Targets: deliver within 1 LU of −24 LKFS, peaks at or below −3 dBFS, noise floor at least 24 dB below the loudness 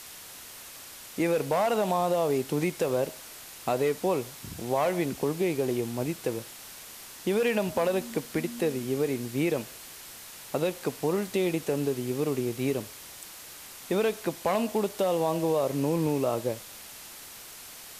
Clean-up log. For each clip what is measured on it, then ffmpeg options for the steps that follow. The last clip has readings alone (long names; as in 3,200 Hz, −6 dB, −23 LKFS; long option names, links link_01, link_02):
background noise floor −46 dBFS; target noise floor −53 dBFS; integrated loudness −28.5 LKFS; sample peak −14.0 dBFS; target loudness −24.0 LKFS
→ -af "afftdn=noise_reduction=7:noise_floor=-46"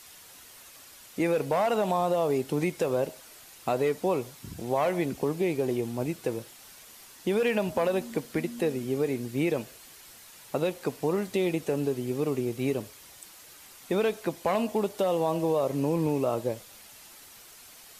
background noise floor −51 dBFS; target noise floor −53 dBFS
→ -af "afftdn=noise_reduction=6:noise_floor=-51"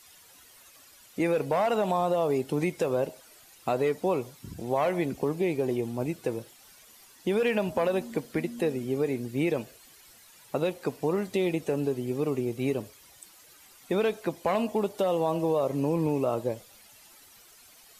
background noise floor −55 dBFS; integrated loudness −29.0 LKFS; sample peak −14.5 dBFS; target loudness −24.0 LKFS
→ -af "volume=5dB"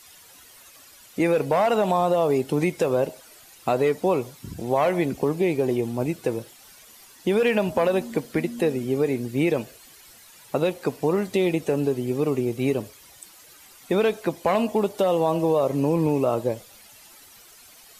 integrated loudness −24.0 LKFS; sample peak −9.5 dBFS; background noise floor −50 dBFS